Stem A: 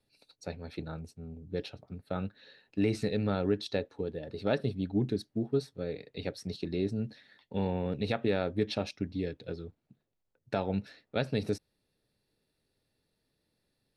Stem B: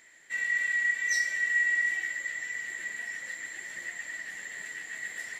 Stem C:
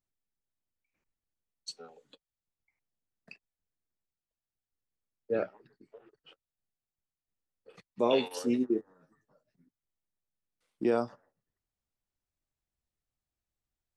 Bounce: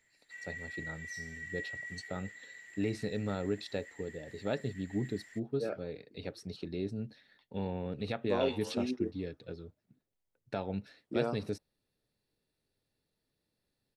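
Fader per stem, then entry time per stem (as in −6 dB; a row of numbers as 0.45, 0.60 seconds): −5.0, −16.0, −6.0 decibels; 0.00, 0.00, 0.30 seconds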